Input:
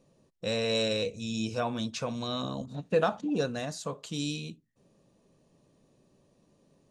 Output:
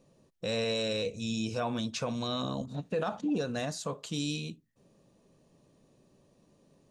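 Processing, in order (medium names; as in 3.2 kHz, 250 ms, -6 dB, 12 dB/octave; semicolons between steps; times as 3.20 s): peak limiter -24 dBFS, peak gain reduction 10 dB; trim +1 dB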